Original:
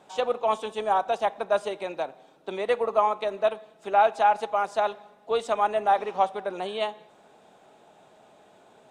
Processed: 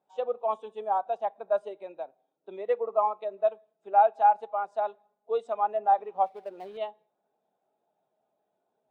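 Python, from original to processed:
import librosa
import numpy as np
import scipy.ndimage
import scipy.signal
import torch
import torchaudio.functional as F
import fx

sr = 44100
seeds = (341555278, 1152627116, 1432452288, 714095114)

y = fx.dead_time(x, sr, dead_ms=0.18, at=(6.26, 6.78))
y = fx.spectral_expand(y, sr, expansion=1.5)
y = y * 10.0 ** (-1.5 / 20.0)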